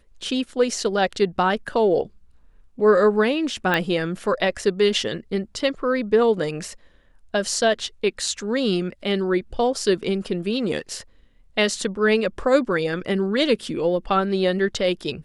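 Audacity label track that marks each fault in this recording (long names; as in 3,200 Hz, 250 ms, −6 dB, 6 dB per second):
3.740000	3.740000	click −9 dBFS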